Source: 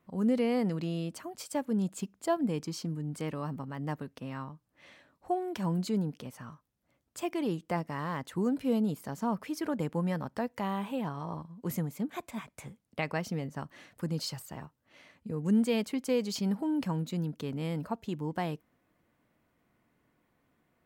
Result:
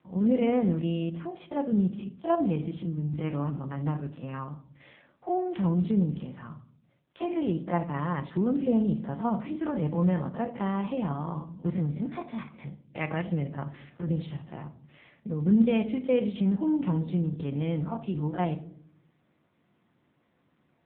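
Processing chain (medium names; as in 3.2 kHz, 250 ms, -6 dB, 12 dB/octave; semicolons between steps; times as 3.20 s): spectrogram pixelated in time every 50 ms; simulated room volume 740 m³, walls furnished, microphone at 0.88 m; trim +4.5 dB; AMR-NB 7.95 kbps 8 kHz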